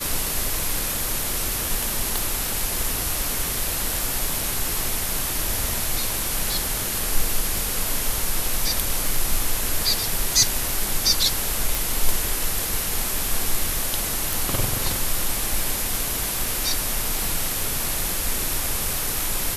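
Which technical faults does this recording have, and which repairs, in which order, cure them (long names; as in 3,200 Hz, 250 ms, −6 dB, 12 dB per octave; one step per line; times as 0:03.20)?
0:02.18: click
0:11.75: click
0:14.33: click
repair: click removal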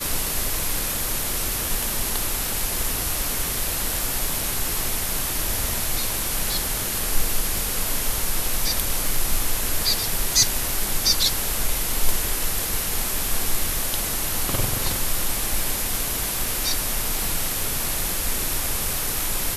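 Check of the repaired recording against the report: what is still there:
none of them is left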